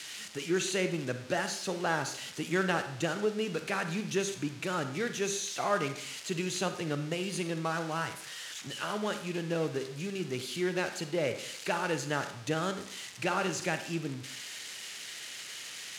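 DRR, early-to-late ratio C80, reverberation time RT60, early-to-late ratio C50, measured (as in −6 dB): 8.0 dB, 12.5 dB, 0.70 s, 9.5 dB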